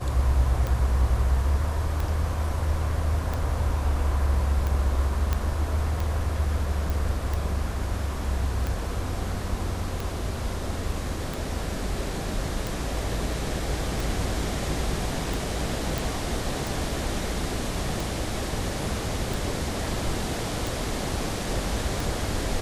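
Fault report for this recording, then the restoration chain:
tick 45 rpm
5.33 s: pop -11 dBFS
6.90 s: pop
15.98 s: pop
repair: de-click

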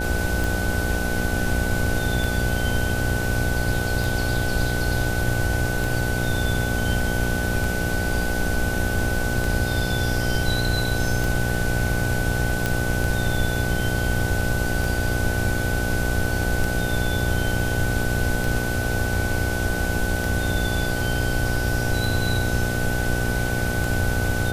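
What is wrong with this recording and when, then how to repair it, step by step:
buzz 60 Hz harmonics 14 -27 dBFS
tick 33 1/3 rpm
whine 1.5 kHz -28 dBFS
12.66 s: pop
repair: de-click; band-stop 1.5 kHz, Q 30; de-hum 60 Hz, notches 14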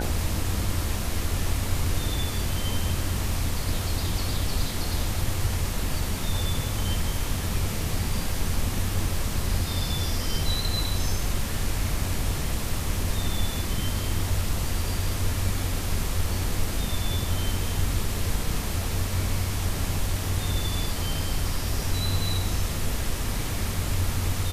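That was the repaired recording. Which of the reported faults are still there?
nothing left

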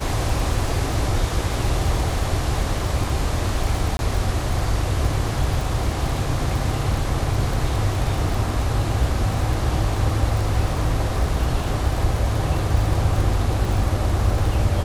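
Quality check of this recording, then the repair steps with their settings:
crackle 33 per s -25 dBFS
3.97–3.99 s: dropout 21 ms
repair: de-click; interpolate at 3.97 s, 21 ms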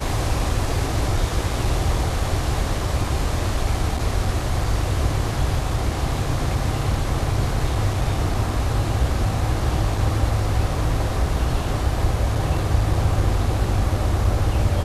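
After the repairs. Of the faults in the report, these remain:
nothing left

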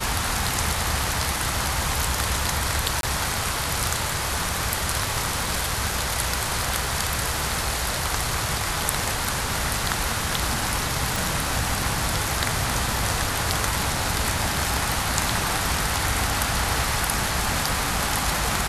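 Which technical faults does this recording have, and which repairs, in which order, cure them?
3.01–3.03 s: dropout 22 ms
11.16 s: pop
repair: de-click; interpolate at 3.01 s, 22 ms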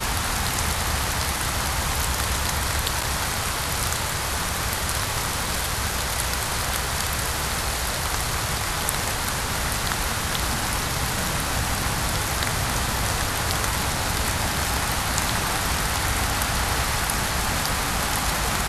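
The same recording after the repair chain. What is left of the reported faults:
nothing left

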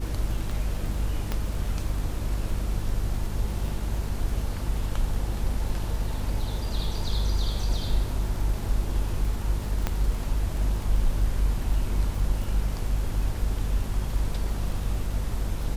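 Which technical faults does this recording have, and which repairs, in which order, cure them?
crackle 37 per s -33 dBFS
hum 50 Hz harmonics 5 -30 dBFS
1.32 s: pop -14 dBFS
9.87 s: pop -11 dBFS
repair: de-click; de-hum 50 Hz, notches 5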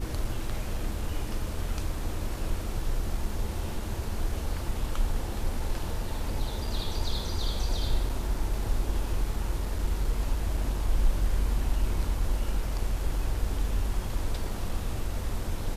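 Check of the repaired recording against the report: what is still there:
nothing left

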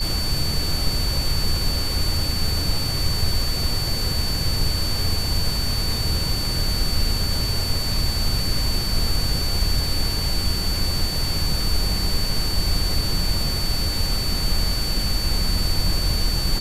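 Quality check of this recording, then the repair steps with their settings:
whine 4.5 kHz -26 dBFS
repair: band-stop 4.5 kHz, Q 30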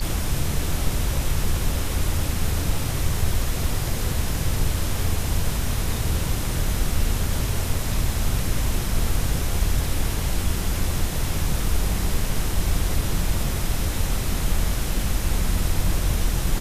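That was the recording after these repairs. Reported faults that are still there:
nothing left

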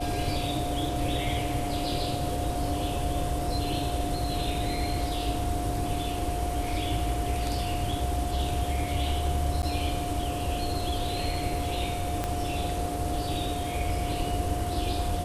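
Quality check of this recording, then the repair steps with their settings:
whine 710 Hz -33 dBFS
9.62–9.63 s: dropout 9.5 ms
12.24 s: pop -14 dBFS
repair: de-click; band-stop 710 Hz, Q 30; interpolate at 9.62 s, 9.5 ms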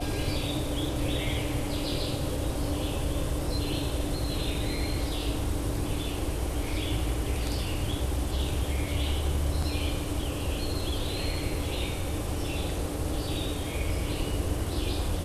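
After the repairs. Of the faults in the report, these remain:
12.24 s: pop

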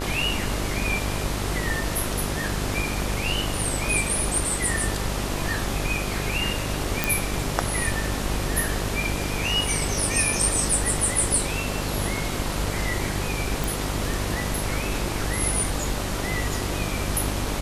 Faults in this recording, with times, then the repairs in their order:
buzz 50 Hz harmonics 27 -30 dBFS
7.04 s: pop
13.64 s: pop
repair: de-click; de-hum 50 Hz, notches 27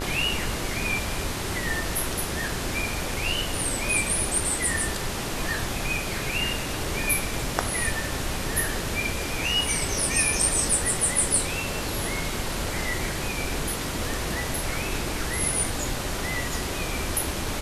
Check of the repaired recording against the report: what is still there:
nothing left

